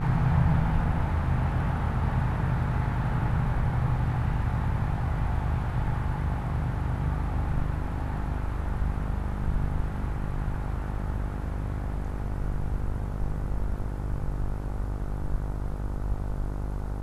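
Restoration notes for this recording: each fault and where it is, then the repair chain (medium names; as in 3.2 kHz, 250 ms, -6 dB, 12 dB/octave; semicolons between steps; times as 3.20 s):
buzz 50 Hz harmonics 30 -32 dBFS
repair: de-hum 50 Hz, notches 30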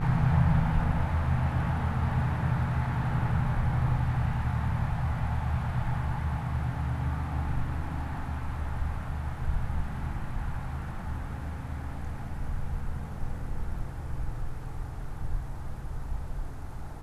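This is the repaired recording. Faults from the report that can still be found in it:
nothing left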